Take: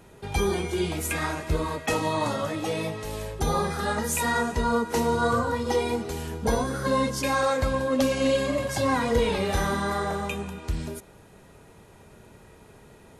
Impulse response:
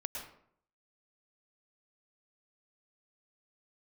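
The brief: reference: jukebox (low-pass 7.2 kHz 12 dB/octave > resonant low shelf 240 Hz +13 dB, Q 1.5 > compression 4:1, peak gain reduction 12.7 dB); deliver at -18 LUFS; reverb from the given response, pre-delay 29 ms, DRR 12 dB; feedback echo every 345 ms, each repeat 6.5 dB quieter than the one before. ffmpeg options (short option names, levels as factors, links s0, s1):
-filter_complex "[0:a]aecho=1:1:345|690|1035|1380|1725|2070:0.473|0.222|0.105|0.0491|0.0231|0.0109,asplit=2[s0][s1];[1:a]atrim=start_sample=2205,adelay=29[s2];[s1][s2]afir=irnorm=-1:irlink=0,volume=0.237[s3];[s0][s3]amix=inputs=2:normalize=0,lowpass=7200,lowshelf=f=240:t=q:w=1.5:g=13,acompressor=threshold=0.0891:ratio=4,volume=2.37"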